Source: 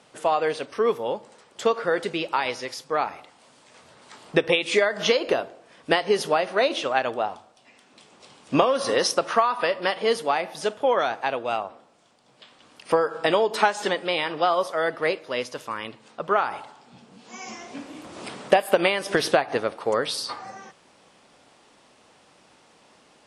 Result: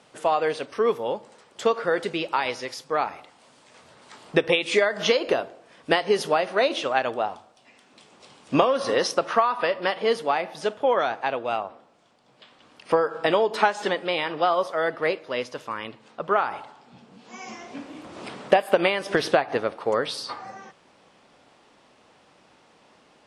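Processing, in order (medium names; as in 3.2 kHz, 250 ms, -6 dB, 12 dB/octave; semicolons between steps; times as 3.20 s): treble shelf 7.1 kHz -3 dB, from 8.67 s -11.5 dB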